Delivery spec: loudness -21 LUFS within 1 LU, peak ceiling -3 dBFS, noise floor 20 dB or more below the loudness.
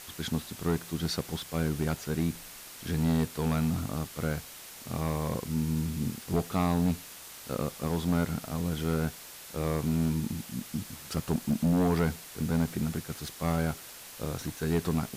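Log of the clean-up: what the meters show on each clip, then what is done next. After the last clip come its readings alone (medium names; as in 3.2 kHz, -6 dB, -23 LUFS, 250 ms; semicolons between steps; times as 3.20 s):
clipped samples 1.2%; clipping level -20.5 dBFS; noise floor -47 dBFS; noise floor target -52 dBFS; loudness -31.5 LUFS; peak level -20.5 dBFS; loudness target -21.0 LUFS
-> clip repair -20.5 dBFS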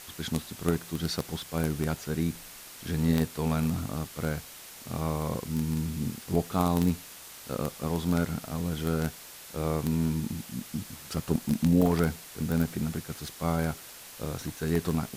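clipped samples 0.0%; noise floor -47 dBFS; noise floor target -51 dBFS
-> noise reduction 6 dB, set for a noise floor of -47 dBFS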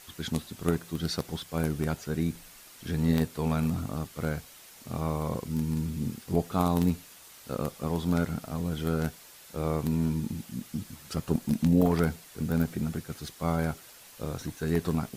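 noise floor -51 dBFS; loudness -30.5 LUFS; peak level -11.5 dBFS; loudness target -21.0 LUFS
-> trim +9.5 dB; peak limiter -3 dBFS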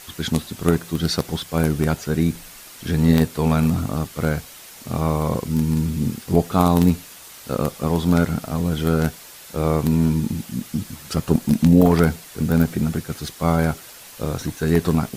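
loudness -21.0 LUFS; peak level -3.0 dBFS; noise floor -42 dBFS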